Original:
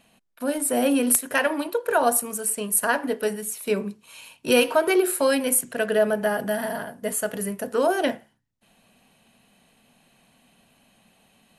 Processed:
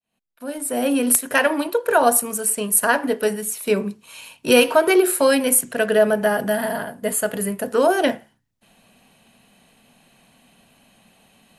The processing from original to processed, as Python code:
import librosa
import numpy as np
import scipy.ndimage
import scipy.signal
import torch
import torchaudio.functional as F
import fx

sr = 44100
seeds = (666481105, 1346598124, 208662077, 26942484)

y = fx.fade_in_head(x, sr, length_s=1.36)
y = fx.notch(y, sr, hz=5800.0, q=6.8, at=(6.53, 7.67))
y = F.gain(torch.from_numpy(y), 4.5).numpy()